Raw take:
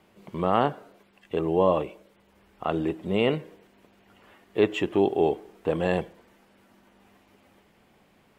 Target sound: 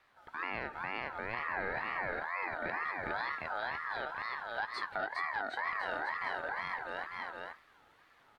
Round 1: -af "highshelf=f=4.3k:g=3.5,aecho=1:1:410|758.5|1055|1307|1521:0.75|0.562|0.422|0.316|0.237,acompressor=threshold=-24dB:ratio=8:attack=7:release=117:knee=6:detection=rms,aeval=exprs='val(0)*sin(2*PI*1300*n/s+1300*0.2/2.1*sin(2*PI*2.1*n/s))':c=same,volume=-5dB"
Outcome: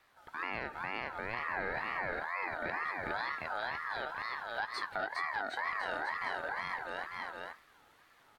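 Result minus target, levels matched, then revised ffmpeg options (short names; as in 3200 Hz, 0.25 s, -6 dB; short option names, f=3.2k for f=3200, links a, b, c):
8000 Hz band +6.0 dB
-af "highshelf=f=4.3k:g=-5.5,aecho=1:1:410|758.5|1055|1307|1521:0.75|0.562|0.422|0.316|0.237,acompressor=threshold=-24dB:ratio=8:attack=7:release=117:knee=6:detection=rms,aeval=exprs='val(0)*sin(2*PI*1300*n/s+1300*0.2/2.1*sin(2*PI*2.1*n/s))':c=same,volume=-5dB"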